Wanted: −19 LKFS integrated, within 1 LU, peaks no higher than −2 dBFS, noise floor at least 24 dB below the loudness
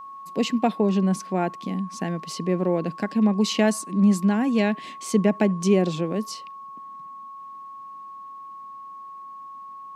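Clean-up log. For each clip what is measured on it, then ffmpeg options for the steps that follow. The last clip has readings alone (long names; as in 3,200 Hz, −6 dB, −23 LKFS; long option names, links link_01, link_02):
interfering tone 1,100 Hz; level of the tone −37 dBFS; integrated loudness −23.5 LKFS; sample peak −7.0 dBFS; target loudness −19.0 LKFS
→ -af "bandreject=frequency=1100:width=30"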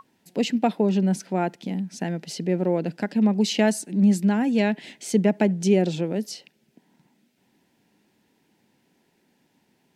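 interfering tone none found; integrated loudness −23.5 LKFS; sample peak −7.5 dBFS; target loudness −19.0 LKFS
→ -af "volume=4.5dB"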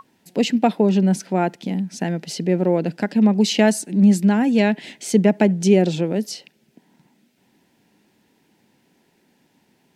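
integrated loudness −19.0 LKFS; sample peak −3.0 dBFS; background noise floor −63 dBFS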